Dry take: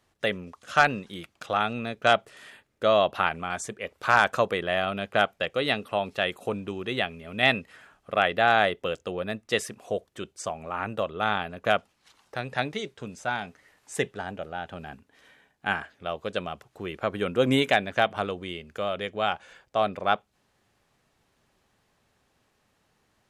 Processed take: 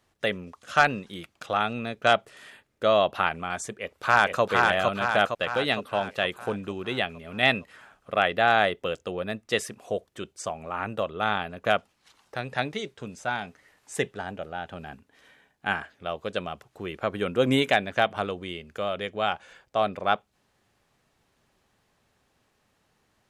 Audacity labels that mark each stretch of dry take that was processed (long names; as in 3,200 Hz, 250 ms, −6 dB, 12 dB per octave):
3.760000	4.420000	delay throw 460 ms, feedback 55%, level −2 dB